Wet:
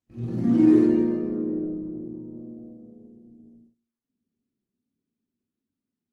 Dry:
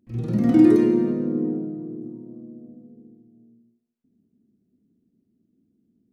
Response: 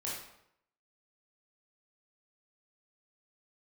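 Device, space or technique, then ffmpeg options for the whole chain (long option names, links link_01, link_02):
speakerphone in a meeting room: -filter_complex "[1:a]atrim=start_sample=2205[link_01];[0:a][link_01]afir=irnorm=-1:irlink=0,dynaudnorm=framelen=490:gausssize=5:maxgain=4.5dB,agate=range=-17dB:threshold=-49dB:ratio=16:detection=peak,volume=-5.5dB" -ar 48000 -c:a libopus -b:a 16k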